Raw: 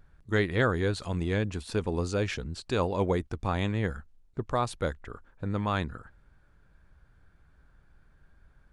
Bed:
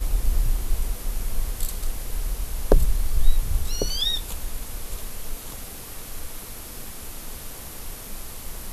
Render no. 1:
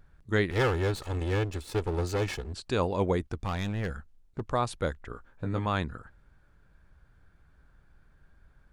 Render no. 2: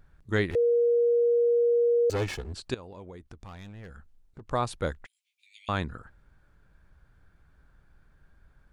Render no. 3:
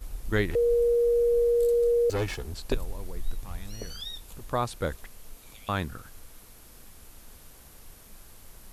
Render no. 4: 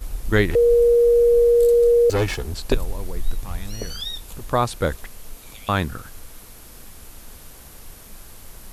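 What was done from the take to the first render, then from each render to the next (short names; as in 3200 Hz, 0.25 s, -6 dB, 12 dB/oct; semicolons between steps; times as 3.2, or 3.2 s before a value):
0.5–2.53 minimum comb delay 2.3 ms; 3.41–4.42 hard clip -26.5 dBFS; 5.09–5.66 doubler 17 ms -5.5 dB
0.55–2.1 bleep 474 Hz -19.5 dBFS; 2.74–4.51 compressor 5:1, threshold -43 dBFS; 5.06–5.69 steep high-pass 2200 Hz 96 dB/oct
add bed -14 dB
gain +8 dB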